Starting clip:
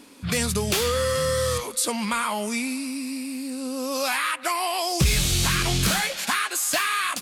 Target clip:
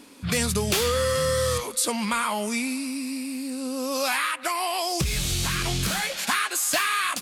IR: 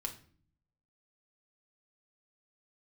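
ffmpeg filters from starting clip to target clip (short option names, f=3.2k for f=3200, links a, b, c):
-filter_complex "[0:a]asettb=1/sr,asplit=3[a][b][c];[a]atrim=end=4.244[d];[b]atrim=start=4.24:end=6.24,asetpts=PTS-STARTPTS,afade=t=in:d=0.004:c=qsin,afade=t=out:st=1.996:d=0.004:c=qsin,acompressor=threshold=-22dB:ratio=6[e];[c]atrim=start=6.236[f];[d][e]acrossfade=d=0.004:c1=hsin:c2=qsin[g];[g][f]acrossfade=d=0.004:c1=qsin:c2=hsin"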